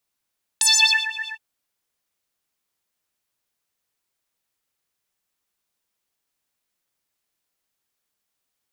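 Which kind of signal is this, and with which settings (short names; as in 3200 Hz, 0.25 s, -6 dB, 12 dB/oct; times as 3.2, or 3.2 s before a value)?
synth patch with filter wobble A5, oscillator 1 saw, sub -29.5 dB, filter bandpass, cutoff 2500 Hz, Q 9.2, filter envelope 1.5 oct, filter decay 0.39 s, filter sustain 0%, attack 5.3 ms, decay 0.47 s, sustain -22 dB, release 0.09 s, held 0.68 s, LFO 8 Hz, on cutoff 0.6 oct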